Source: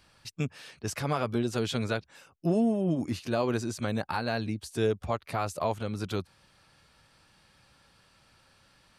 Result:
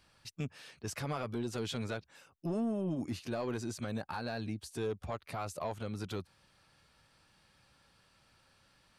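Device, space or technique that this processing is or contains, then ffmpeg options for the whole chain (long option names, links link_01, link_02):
soft clipper into limiter: -af "asoftclip=type=tanh:threshold=-19.5dB,alimiter=limit=-23dB:level=0:latency=1:release=70,volume=-5dB"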